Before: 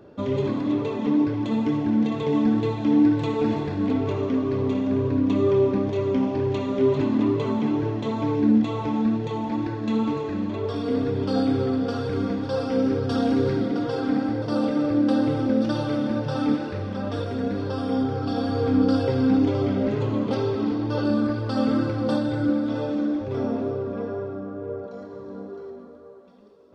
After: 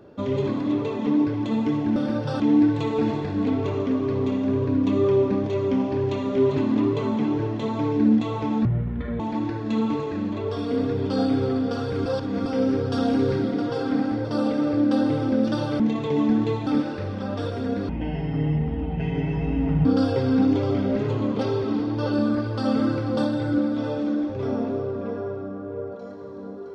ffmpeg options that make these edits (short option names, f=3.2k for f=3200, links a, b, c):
-filter_complex "[0:a]asplit=11[a][b][c][d][e][f][g][h][i][j][k];[a]atrim=end=1.962[l];[b]atrim=start=15.968:end=16.412[m];[c]atrim=start=2.828:end=9.084[n];[d]atrim=start=9.08:end=9.37,asetpts=PTS-STARTPTS,asetrate=23373,aresample=44100,atrim=end_sample=24130,asetpts=PTS-STARTPTS[o];[e]atrim=start=9.366:end=12.232[p];[f]atrim=start=12.228:end=12.632,asetpts=PTS-STARTPTS,areverse[q];[g]atrim=start=12.628:end=15.972[r];[h]atrim=start=1.958:end=2.832[s];[i]atrim=start=16.408:end=17.634[t];[j]atrim=start=17.63:end=18.77,asetpts=PTS-STARTPTS,asetrate=25578,aresample=44100,atrim=end_sample=86679,asetpts=PTS-STARTPTS[u];[k]atrim=start=18.766[v];[l][m]acrossfade=d=0.004:c1=hsin:c2=hsin[w];[w][n]acrossfade=d=0.004:c1=hsin:c2=hsin[x];[x][o]acrossfade=d=0.004:c1=hsin:c2=hsin[y];[y][p]acrossfade=d=0.004:c1=hsin:c2=hsin[z];[z][q]acrossfade=d=0.004:c1=hsin:c2=hsin[aa];[aa][r]acrossfade=d=0.004:c1=hsin:c2=hsin[ab];[ab][s]acrossfade=d=0.004:c1=hsin:c2=hsin[ac];[ac][t]acrossfade=d=0.004:c1=hsin:c2=hsin[ad];[ad][u]acrossfade=d=0.004:c1=hsin:c2=hsin[ae];[ae][v]acrossfade=d=0.004:c1=hsin:c2=hsin"